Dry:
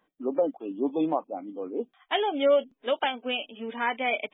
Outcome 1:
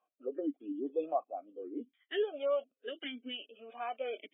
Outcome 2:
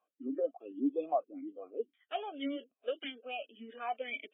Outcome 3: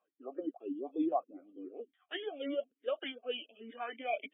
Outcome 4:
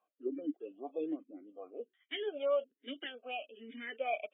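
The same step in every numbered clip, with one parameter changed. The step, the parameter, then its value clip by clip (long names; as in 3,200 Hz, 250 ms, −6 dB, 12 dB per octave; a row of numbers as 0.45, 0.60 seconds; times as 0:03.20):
formant filter swept between two vowels, speed: 0.79, 1.8, 3.4, 1.2 Hertz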